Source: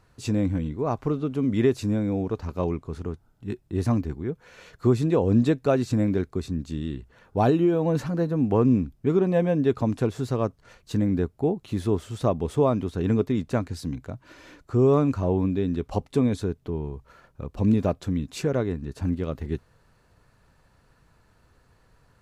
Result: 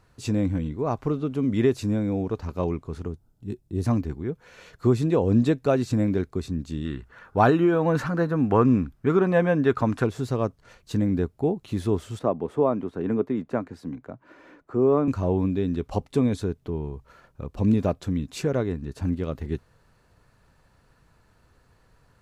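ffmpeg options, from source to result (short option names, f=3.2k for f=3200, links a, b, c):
-filter_complex "[0:a]asettb=1/sr,asplit=3[a][b][c];[a]atrim=end=3.084[d];[b]atrim=start=3.08:end=3.84,asetpts=PTS-STARTPTS,afade=t=in:d=0.004:c=qsin,afade=t=out:st=0.756:d=0.004:c=qsin,equalizer=f=1.6k:t=o:w=2.5:g=-11[e];[c]atrim=start=3.836[f];[d][e]acrossfade=d=0.004:c1=hsin:c2=qsin[g];[g][f]acrossfade=d=0.004:c1=qsin:c2=hsin,asettb=1/sr,asplit=3[h][i][j];[h]atrim=end=6.854[k];[i]atrim=start=6.85:end=10.04,asetpts=PTS-STARTPTS,afade=t=in:d=0.004:c=qsin,afade=t=out:st=3.186:d=0.004:c=qsin,equalizer=f=1.4k:t=o:w=1.2:g=11.5[l];[j]atrim=start=10.036[m];[k][l]acrossfade=d=0.004:c1=hsin:c2=qsin[n];[n][m]acrossfade=d=0.004:c1=qsin:c2=hsin,asettb=1/sr,asplit=3[o][p][q];[o]atrim=end=12.194[r];[p]atrim=start=12.19:end=15.08,asetpts=PTS-STARTPTS,afade=t=in:d=0.004:c=qsin,afade=t=out:st=2.886:d=0.004:c=qsin,acrossover=split=170 2100:gain=0.158 1 0.178[s][t][u];[s][t][u]amix=inputs=3:normalize=0[v];[q]atrim=start=15.076[w];[r][v]acrossfade=d=0.004:c1=hsin:c2=qsin[x];[x][w]acrossfade=d=0.004:c1=qsin:c2=hsin"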